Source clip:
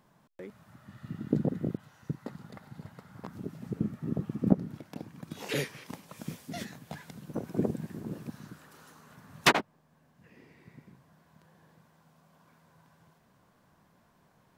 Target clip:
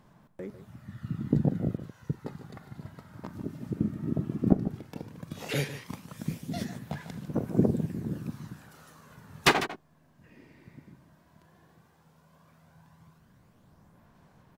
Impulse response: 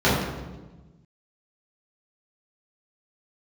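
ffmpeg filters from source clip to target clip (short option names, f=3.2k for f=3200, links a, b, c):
-af "lowshelf=f=150:g=8.5,aecho=1:1:42|149:0.141|0.237,aphaser=in_gain=1:out_gain=1:delay=3.3:decay=0.32:speed=0.14:type=sinusoidal"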